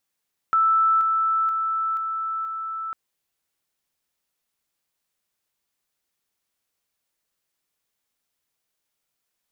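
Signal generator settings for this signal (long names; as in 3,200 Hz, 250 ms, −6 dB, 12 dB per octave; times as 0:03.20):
level staircase 1,320 Hz −15.5 dBFS, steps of −3 dB, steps 5, 0.48 s 0.00 s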